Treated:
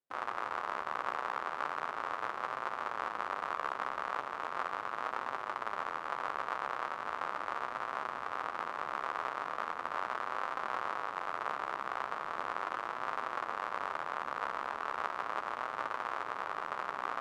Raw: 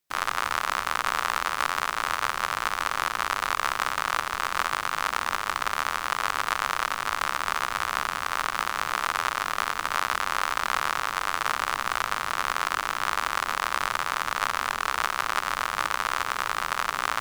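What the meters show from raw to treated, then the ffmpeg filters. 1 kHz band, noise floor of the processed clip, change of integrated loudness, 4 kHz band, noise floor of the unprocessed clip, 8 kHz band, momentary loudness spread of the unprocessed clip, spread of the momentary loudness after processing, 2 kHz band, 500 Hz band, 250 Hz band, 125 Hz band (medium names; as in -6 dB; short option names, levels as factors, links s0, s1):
-9.0 dB, -43 dBFS, -10.5 dB, -19.0 dB, -34 dBFS, under -25 dB, 1 LU, 2 LU, -12.5 dB, -4.5 dB, -7.0 dB, -14.0 dB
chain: -af "bandpass=f=500:t=q:w=0.84:csg=0,flanger=delay=7.6:depth=7.4:regen=-35:speed=0.38:shape=sinusoidal"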